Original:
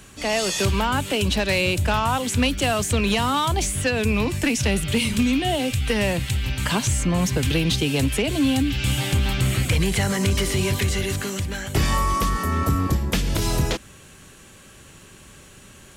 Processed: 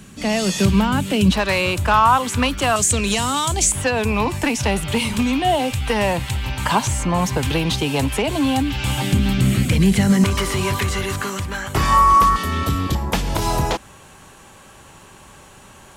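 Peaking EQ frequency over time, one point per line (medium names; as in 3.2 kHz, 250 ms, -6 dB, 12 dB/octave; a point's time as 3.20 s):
peaking EQ +12.5 dB 0.93 oct
190 Hz
from 1.32 s 1.1 kHz
from 2.76 s 7.5 kHz
from 3.72 s 900 Hz
from 9.02 s 210 Hz
from 10.24 s 1.1 kHz
from 12.36 s 3.4 kHz
from 12.95 s 870 Hz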